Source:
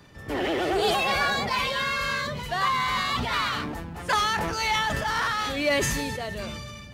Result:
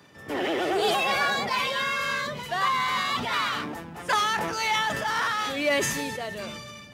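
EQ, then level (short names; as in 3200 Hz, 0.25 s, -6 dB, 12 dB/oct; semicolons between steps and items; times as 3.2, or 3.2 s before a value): Bessel high-pass 190 Hz, order 2; notch 4300 Hz, Q 16; 0.0 dB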